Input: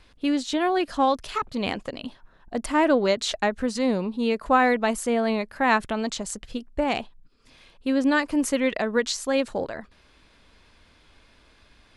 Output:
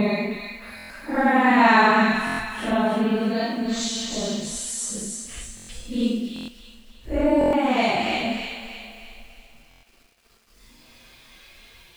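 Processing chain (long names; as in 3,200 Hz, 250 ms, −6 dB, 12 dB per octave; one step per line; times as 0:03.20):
hum removal 113.2 Hz, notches 27
dynamic equaliser 280 Hz, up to +4 dB, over −35 dBFS, Q 1.8
extreme stretch with random phases 5.1×, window 0.05 s, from 0:05.38
bit-depth reduction 10 bits, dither none
delay with a high-pass on its return 310 ms, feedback 46%, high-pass 1,600 Hz, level −4 dB
on a send at −8 dB: convolution reverb RT60 0.90 s, pre-delay 4 ms
on the sum: buffer that repeats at 0:00.76/0:02.25/0:05.55/0:06.34/0:07.39/0:09.69, samples 1,024, times 5
level +1.5 dB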